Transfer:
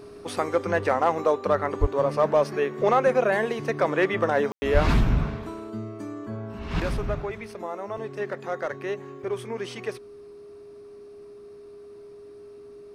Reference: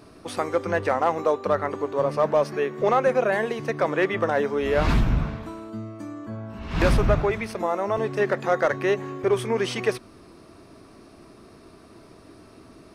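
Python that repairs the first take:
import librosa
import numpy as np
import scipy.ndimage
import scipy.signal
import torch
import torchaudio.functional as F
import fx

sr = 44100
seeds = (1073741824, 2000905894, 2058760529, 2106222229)

y = fx.notch(x, sr, hz=410.0, q=30.0)
y = fx.highpass(y, sr, hz=140.0, slope=24, at=(1.8, 1.92), fade=0.02)
y = fx.highpass(y, sr, hz=140.0, slope=24, at=(4.73, 4.85), fade=0.02)
y = fx.fix_ambience(y, sr, seeds[0], print_start_s=10.42, print_end_s=10.92, start_s=4.52, end_s=4.62)
y = fx.gain(y, sr, db=fx.steps((0.0, 0.0), (6.8, 8.5)))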